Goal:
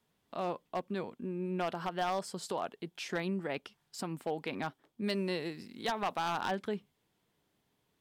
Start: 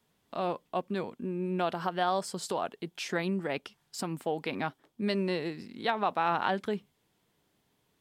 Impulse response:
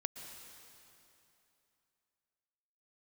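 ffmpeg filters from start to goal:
-filter_complex "[0:a]asettb=1/sr,asplit=3[a][b][c];[a]atrim=end=5.044[d];[b]atrim=start=5.04:end=6.4,asetpts=PTS-STARTPTS,afade=t=in:d=0.004:c=qsin,afade=t=out:st=1.356:d=0.004:c=qsin,aemphasis=mode=production:type=cd[e];[c]atrim=start=6.396[f];[d][e]acrossfade=d=0.004:c1=hsin:c2=qsin[g];[g][f]acrossfade=d=0.004:c1=qsin:c2=hsin,aeval=exprs='0.0891*(abs(mod(val(0)/0.0891+3,4)-2)-1)':c=same,asplit=2[h][i];[1:a]atrim=start_sample=2205,atrim=end_sample=3528,lowpass=5.9k[j];[i][j]afir=irnorm=-1:irlink=0,volume=-13dB[k];[h][k]amix=inputs=2:normalize=0,volume=-5dB"

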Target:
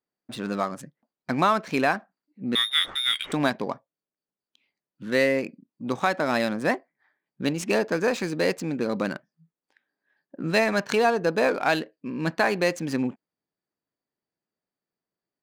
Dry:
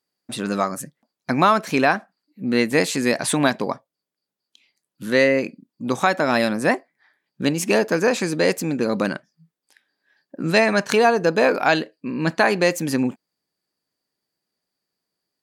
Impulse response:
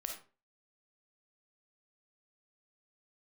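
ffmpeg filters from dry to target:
-filter_complex "[0:a]asettb=1/sr,asplit=3[a][b][c];[a]atrim=end=2.554[d];[b]atrim=start=2.55:end=3.32,asetpts=PTS-STARTPTS,afade=t=in:d=0.004:c=qsin,afade=t=out:st=0.766:d=0.004:c=qsin,lowpass=f=3.3k:t=q:w=0.5098,lowpass=f=3.3k:t=q:w=0.6013,lowpass=f=3.3k:t=q:w=0.9,lowpass=f=3.3k:t=q:w=2.563,afreqshift=-3900[e];[c]atrim=start=3.316[f];[d][e]acrossfade=d=0.004:c1=hsin:c2=qsin[g];[g][f]acrossfade=d=0.004:c1=qsin:c2=hsin,adynamicsmooth=sensitivity=6:basefreq=2.6k,volume=-5dB"

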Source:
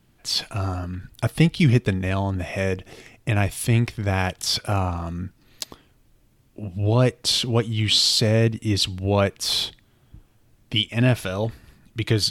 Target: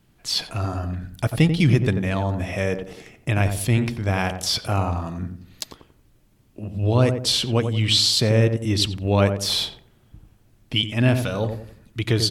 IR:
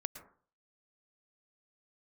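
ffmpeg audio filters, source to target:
-filter_complex "[0:a]asplit=2[a][b];[b]adelay=90,lowpass=f=920:p=1,volume=-6dB,asplit=2[c][d];[d]adelay=90,lowpass=f=920:p=1,volume=0.39,asplit=2[e][f];[f]adelay=90,lowpass=f=920:p=1,volume=0.39,asplit=2[g][h];[h]adelay=90,lowpass=f=920:p=1,volume=0.39,asplit=2[i][j];[j]adelay=90,lowpass=f=920:p=1,volume=0.39[k];[a][c][e][g][i][k]amix=inputs=6:normalize=0"

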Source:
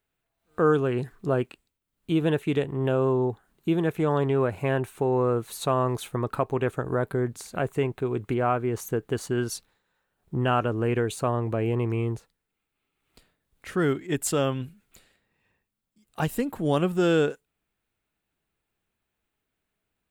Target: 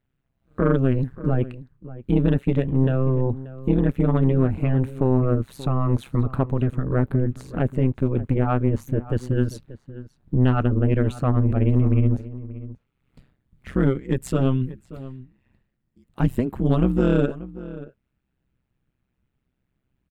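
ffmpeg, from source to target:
-filter_complex "[0:a]bass=f=250:g=14,treble=f=4k:g=-10,asplit=2[a][b];[b]aeval=exprs='0.501*sin(PI/2*1.58*val(0)/0.501)':c=same,volume=-8dB[c];[a][c]amix=inputs=2:normalize=0,tremolo=f=130:d=1,asplit=2[d][e];[e]adelay=583.1,volume=-16dB,highshelf=f=4k:g=-13.1[f];[d][f]amix=inputs=2:normalize=0,volume=-3dB"

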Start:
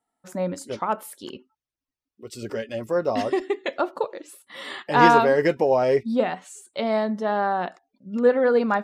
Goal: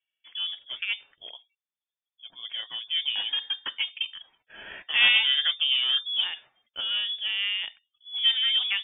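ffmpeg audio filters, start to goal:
-af "acrusher=bits=7:mode=log:mix=0:aa=0.000001,aeval=exprs='0.841*(cos(1*acos(clip(val(0)/0.841,-1,1)))-cos(1*PI/2))+0.0531*(cos(6*acos(clip(val(0)/0.841,-1,1)))-cos(6*PI/2))':c=same,lowpass=f=3.1k:t=q:w=0.5098,lowpass=f=3.1k:t=q:w=0.6013,lowpass=f=3.1k:t=q:w=0.9,lowpass=f=3.1k:t=q:w=2.563,afreqshift=-3600,volume=-5.5dB"

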